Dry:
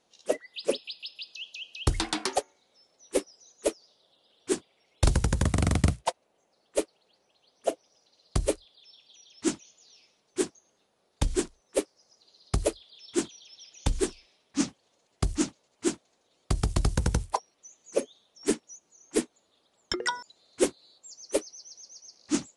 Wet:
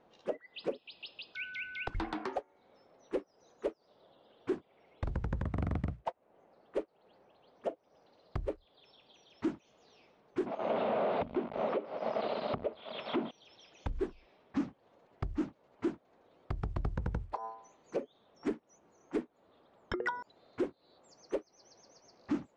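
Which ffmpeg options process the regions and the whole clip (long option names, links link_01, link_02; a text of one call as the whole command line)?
ffmpeg -i in.wav -filter_complex "[0:a]asettb=1/sr,asplit=3[link_01][link_02][link_03];[link_01]atrim=end=1.354[link_04];[link_02]atrim=start=1.35:end=1.95,asetpts=PTS-STARTPTS,afade=type=in:duration=0.004:curve=qsin,afade=type=out:start_time=0.596:duration=0.004:curve=qsin,highpass=570,lowpass=7700,afreqshift=-420,aeval=exprs='val(0)+0.00398*sin(2*PI*1500*n/s)':channel_layout=same[link_05];[link_03]atrim=start=1.946[link_06];[link_04][link_05]acrossfade=duration=0.004:curve1=hsin:curve2=qsin[link_07];[link_07][link_06]acrossfade=duration=0.004:curve1=qsin:curve2=hsin,asettb=1/sr,asplit=3[link_08][link_09][link_10];[link_08]atrim=end=10.464[link_11];[link_09]atrim=start=10.46:end=13.31,asetpts=PTS-STARTPTS,afade=type=in:duration=0.004:curve=qsin,afade=type=out:start_time=2.846:duration=0.004:curve=qsin,aeval=exprs='val(0)+0.5*0.0376*sgn(val(0))':channel_layout=same,highpass=220,equalizer=frequency=230:width_type=q:width=4:gain=6,equalizer=frequency=330:width_type=q:width=4:gain=-6,equalizer=frequency=630:width_type=q:width=4:gain=8,equalizer=frequency=1700:width_type=q:width=4:gain=-8,lowpass=frequency=3500:width=0.5412,lowpass=frequency=3500:width=1.3066[link_12];[link_10]atrim=start=13.306[link_13];[link_11][link_12]acrossfade=duration=0.004:curve1=hsin:curve2=qsin[link_14];[link_14][link_13]acrossfade=duration=0.004:curve1=qsin:curve2=hsin,asettb=1/sr,asplit=3[link_15][link_16][link_17];[link_15]atrim=end=17.294[link_18];[link_16]atrim=start=17.29:end=17.98,asetpts=PTS-STARTPTS,afade=type=in:duration=0.004:curve=qsin,afade=type=out:start_time=0.686:duration=0.004:curve=qsin,bandreject=frequency=112.1:width_type=h:width=4,bandreject=frequency=224.2:width_type=h:width=4,bandreject=frequency=336.3:width_type=h:width=4,bandreject=frequency=448.4:width_type=h:width=4,bandreject=frequency=560.5:width_type=h:width=4,bandreject=frequency=672.6:width_type=h:width=4,bandreject=frequency=784.7:width_type=h:width=4,bandreject=frequency=896.8:width_type=h:width=4,bandreject=frequency=1008.9:width_type=h:width=4,bandreject=frequency=1121:width_type=h:width=4,bandreject=frequency=1233.1:width_type=h:width=4,bandreject=frequency=1345.2:width_type=h:width=4,bandreject=frequency=1457.3:width_type=h:width=4,bandreject=frequency=1569.4:width_type=h:width=4,bandreject=frequency=1681.5:width_type=h:width=4,bandreject=frequency=1793.6:width_type=h:width=4,acompressor=threshold=-36dB:ratio=4:attack=3.2:release=140:knee=1:detection=peak,equalizer=frequency=4300:width_type=o:width=0.31:gain=6[link_19];[link_17]atrim=start=17.976[link_20];[link_18][link_19]acrossfade=duration=0.004:curve1=hsin:curve2=qsin[link_21];[link_21][link_20]acrossfade=duration=0.004:curve1=qsin:curve2=hsin,lowpass=1500,acompressor=threshold=-34dB:ratio=4,alimiter=level_in=7.5dB:limit=-24dB:level=0:latency=1:release=349,volume=-7.5dB,volume=8dB" out.wav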